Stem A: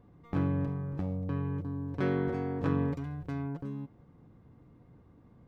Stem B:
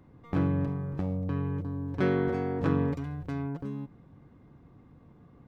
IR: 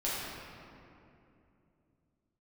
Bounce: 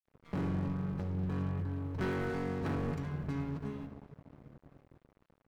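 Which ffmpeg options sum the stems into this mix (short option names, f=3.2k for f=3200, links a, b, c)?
-filter_complex "[0:a]acompressor=threshold=-38dB:ratio=6,volume=-5dB,asplit=2[a][b];[b]volume=-12dB[c];[1:a]equalizer=f=520:w=1.2:g=-5.5,asoftclip=type=tanh:threshold=-30.5dB,adelay=4.8,volume=0dB,asplit=2[d][e];[e]volume=-12.5dB[f];[2:a]atrim=start_sample=2205[g];[c][f]amix=inputs=2:normalize=0[h];[h][g]afir=irnorm=-1:irlink=0[i];[a][d][i]amix=inputs=3:normalize=0,bandreject=f=3.6k:w=16,aeval=exprs='sgn(val(0))*max(abs(val(0))-0.00398,0)':c=same"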